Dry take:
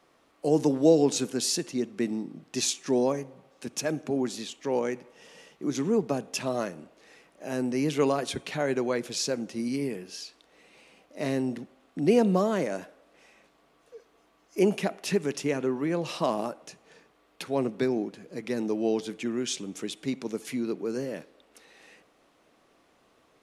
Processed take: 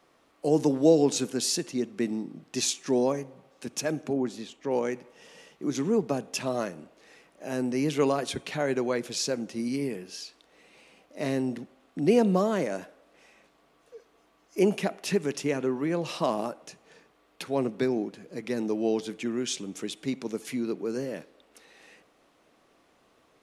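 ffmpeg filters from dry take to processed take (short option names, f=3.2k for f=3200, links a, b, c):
-filter_complex "[0:a]asettb=1/sr,asplit=3[a][b][c];[a]atrim=end=4.134[d];[b]atrim=start=4.13:end=4.71,asetpts=PTS-STARTPTS,afade=t=in:d=0.004:c=qsin,afade=t=out:st=0.576:d=0.004:c=qsin,highshelf=f=2.6k:g=-10[e];[c]atrim=start=4.706[f];[d][e]acrossfade=d=0.004:c1=hsin:c2=qsin[g];[g][f]acrossfade=d=0.004:c1=qsin:c2=hsin"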